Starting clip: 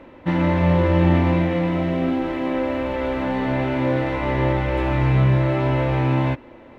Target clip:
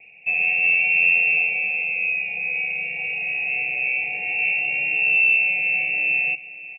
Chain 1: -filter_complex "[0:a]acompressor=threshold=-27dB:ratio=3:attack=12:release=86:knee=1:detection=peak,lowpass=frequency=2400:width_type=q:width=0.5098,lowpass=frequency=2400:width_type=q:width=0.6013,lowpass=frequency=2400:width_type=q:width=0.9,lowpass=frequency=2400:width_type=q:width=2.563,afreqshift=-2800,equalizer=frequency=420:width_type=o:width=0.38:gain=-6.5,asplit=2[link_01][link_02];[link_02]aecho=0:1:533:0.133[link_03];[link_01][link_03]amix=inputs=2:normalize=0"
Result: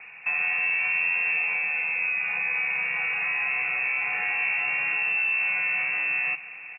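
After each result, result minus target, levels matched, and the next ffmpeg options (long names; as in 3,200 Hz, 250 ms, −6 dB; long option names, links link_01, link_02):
downward compressor: peak gain reduction +10.5 dB; 1,000 Hz band +8.5 dB
-filter_complex "[0:a]lowpass=frequency=2400:width_type=q:width=0.5098,lowpass=frequency=2400:width_type=q:width=0.6013,lowpass=frequency=2400:width_type=q:width=0.9,lowpass=frequency=2400:width_type=q:width=2.563,afreqshift=-2800,equalizer=frequency=420:width_type=o:width=0.38:gain=-6.5,asplit=2[link_01][link_02];[link_02]aecho=0:1:533:0.133[link_03];[link_01][link_03]amix=inputs=2:normalize=0"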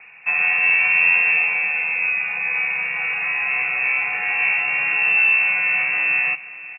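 1,000 Hz band +8.0 dB
-filter_complex "[0:a]lowpass=frequency=2400:width_type=q:width=0.5098,lowpass=frequency=2400:width_type=q:width=0.6013,lowpass=frequency=2400:width_type=q:width=0.9,lowpass=frequency=2400:width_type=q:width=2.563,afreqshift=-2800,asuperstop=centerf=1300:order=8:qfactor=0.76,equalizer=frequency=420:width_type=o:width=0.38:gain=-6.5,asplit=2[link_01][link_02];[link_02]aecho=0:1:533:0.133[link_03];[link_01][link_03]amix=inputs=2:normalize=0"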